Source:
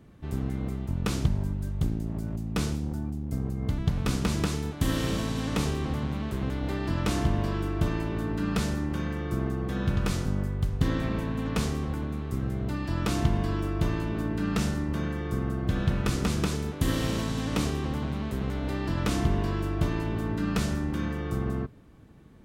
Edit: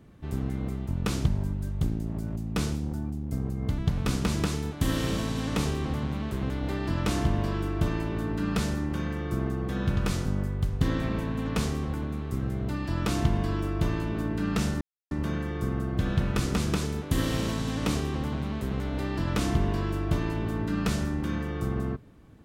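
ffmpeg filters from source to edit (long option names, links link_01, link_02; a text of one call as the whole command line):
ffmpeg -i in.wav -filter_complex "[0:a]asplit=2[link_01][link_02];[link_01]atrim=end=14.81,asetpts=PTS-STARTPTS,afade=type=out:start_time=14.806:duration=0.004:curve=hsin,apad=pad_dur=0.3[link_03];[link_02]atrim=start=14.81,asetpts=PTS-STARTPTS,afade=type=in:duration=0.004:curve=hsin[link_04];[link_03][link_04]concat=n=2:v=0:a=1" out.wav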